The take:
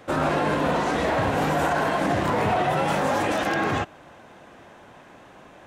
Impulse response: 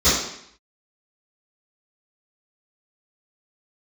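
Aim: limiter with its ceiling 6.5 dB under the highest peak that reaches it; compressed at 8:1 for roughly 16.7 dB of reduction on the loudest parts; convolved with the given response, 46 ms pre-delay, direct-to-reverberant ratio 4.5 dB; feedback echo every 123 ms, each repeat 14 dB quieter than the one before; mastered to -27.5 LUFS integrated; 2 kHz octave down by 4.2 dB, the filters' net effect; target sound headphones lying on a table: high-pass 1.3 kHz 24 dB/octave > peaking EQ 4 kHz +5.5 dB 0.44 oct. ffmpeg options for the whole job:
-filter_complex "[0:a]equalizer=f=2000:t=o:g=-5,acompressor=threshold=0.0126:ratio=8,alimiter=level_in=2.82:limit=0.0631:level=0:latency=1,volume=0.355,aecho=1:1:123|246:0.2|0.0399,asplit=2[s0][s1];[1:a]atrim=start_sample=2205,adelay=46[s2];[s1][s2]afir=irnorm=-1:irlink=0,volume=0.0562[s3];[s0][s3]amix=inputs=2:normalize=0,highpass=f=1300:w=0.5412,highpass=f=1300:w=1.3066,equalizer=f=4000:t=o:w=0.44:g=5.5,volume=12.6"

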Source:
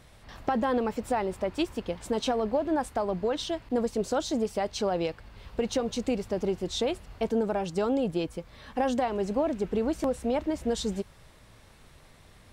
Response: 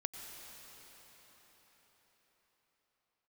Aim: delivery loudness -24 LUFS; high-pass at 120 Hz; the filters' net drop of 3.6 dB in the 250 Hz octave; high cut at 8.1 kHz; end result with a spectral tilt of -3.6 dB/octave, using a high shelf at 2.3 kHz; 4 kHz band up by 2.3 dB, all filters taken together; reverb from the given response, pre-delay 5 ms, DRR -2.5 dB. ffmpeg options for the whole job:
-filter_complex "[0:a]highpass=120,lowpass=8100,equalizer=f=250:t=o:g=-4,highshelf=f=2300:g=-6.5,equalizer=f=4000:t=o:g=8.5,asplit=2[s0][s1];[1:a]atrim=start_sample=2205,adelay=5[s2];[s1][s2]afir=irnorm=-1:irlink=0,volume=1.41[s3];[s0][s3]amix=inputs=2:normalize=0,volume=1.41"

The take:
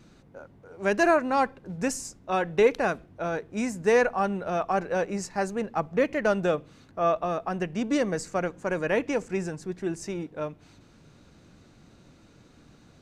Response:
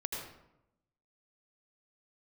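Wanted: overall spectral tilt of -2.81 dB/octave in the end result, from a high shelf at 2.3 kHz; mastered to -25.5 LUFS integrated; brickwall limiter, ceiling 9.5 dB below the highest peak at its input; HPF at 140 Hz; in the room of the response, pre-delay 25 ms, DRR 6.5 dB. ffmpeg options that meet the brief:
-filter_complex "[0:a]highpass=140,highshelf=f=2300:g=-4,alimiter=limit=0.112:level=0:latency=1,asplit=2[s0][s1];[1:a]atrim=start_sample=2205,adelay=25[s2];[s1][s2]afir=irnorm=-1:irlink=0,volume=0.376[s3];[s0][s3]amix=inputs=2:normalize=0,volume=1.68"

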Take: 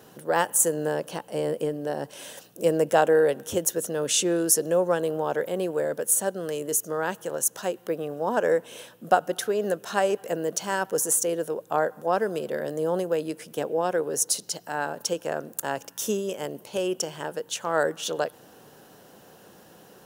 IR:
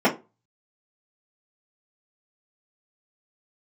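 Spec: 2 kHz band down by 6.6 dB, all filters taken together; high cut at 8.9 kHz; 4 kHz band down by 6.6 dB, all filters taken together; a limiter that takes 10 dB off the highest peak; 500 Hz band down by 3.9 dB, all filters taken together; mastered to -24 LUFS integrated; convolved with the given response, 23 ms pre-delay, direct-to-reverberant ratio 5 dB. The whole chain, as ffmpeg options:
-filter_complex "[0:a]lowpass=8900,equalizer=f=500:t=o:g=-4,equalizer=f=2000:t=o:g=-8,equalizer=f=4000:t=o:g=-6.5,alimiter=limit=0.119:level=0:latency=1,asplit=2[s0][s1];[1:a]atrim=start_sample=2205,adelay=23[s2];[s1][s2]afir=irnorm=-1:irlink=0,volume=0.0668[s3];[s0][s3]amix=inputs=2:normalize=0,volume=1.78"

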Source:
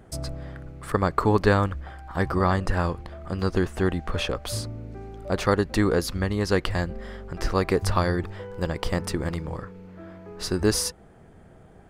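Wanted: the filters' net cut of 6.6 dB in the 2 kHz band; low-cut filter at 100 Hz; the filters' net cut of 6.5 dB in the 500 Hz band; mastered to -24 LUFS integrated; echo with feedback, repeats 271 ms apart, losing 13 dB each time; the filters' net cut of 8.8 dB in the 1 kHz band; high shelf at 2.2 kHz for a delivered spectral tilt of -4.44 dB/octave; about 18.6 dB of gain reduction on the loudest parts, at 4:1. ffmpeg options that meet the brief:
-af "highpass=100,equalizer=f=500:t=o:g=-6.5,equalizer=f=1000:t=o:g=-8.5,equalizer=f=2000:t=o:g=-7.5,highshelf=f=2200:g=5,acompressor=threshold=0.00708:ratio=4,aecho=1:1:271|542|813:0.224|0.0493|0.0108,volume=10.6"

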